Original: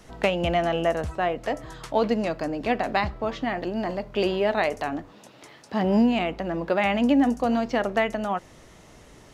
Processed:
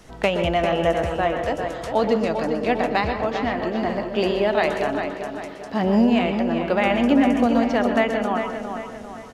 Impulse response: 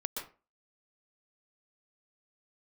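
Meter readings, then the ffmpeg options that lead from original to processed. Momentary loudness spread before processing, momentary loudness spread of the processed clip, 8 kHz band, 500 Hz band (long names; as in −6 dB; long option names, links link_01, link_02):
9 LU, 11 LU, can't be measured, +4.0 dB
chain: -filter_complex "[0:a]asplit=2[link_01][link_02];[link_02]adelay=397,lowpass=frequency=4100:poles=1,volume=-7dB,asplit=2[link_03][link_04];[link_04]adelay=397,lowpass=frequency=4100:poles=1,volume=0.47,asplit=2[link_05][link_06];[link_06]adelay=397,lowpass=frequency=4100:poles=1,volume=0.47,asplit=2[link_07][link_08];[link_08]adelay=397,lowpass=frequency=4100:poles=1,volume=0.47,asplit=2[link_09][link_10];[link_10]adelay=397,lowpass=frequency=4100:poles=1,volume=0.47,asplit=2[link_11][link_12];[link_12]adelay=397,lowpass=frequency=4100:poles=1,volume=0.47[link_13];[link_01][link_03][link_05][link_07][link_09][link_11][link_13]amix=inputs=7:normalize=0,asplit=2[link_14][link_15];[1:a]atrim=start_sample=2205[link_16];[link_15][link_16]afir=irnorm=-1:irlink=0,volume=0dB[link_17];[link_14][link_17]amix=inputs=2:normalize=0,volume=-3.5dB"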